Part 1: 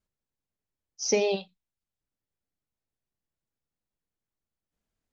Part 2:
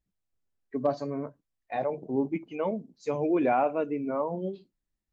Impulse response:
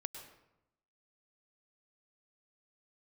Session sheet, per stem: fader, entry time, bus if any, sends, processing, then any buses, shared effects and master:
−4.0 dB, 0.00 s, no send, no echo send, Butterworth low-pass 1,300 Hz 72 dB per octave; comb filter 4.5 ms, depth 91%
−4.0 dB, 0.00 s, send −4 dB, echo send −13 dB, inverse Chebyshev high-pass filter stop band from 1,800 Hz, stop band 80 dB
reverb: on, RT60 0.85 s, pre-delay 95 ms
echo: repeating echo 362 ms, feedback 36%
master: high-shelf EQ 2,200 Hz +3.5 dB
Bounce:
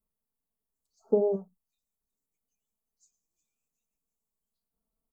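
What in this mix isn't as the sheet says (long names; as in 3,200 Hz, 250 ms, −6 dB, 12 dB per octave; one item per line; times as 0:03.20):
stem 2 −4.0 dB → +2.0 dB
master: missing high-shelf EQ 2,200 Hz +3.5 dB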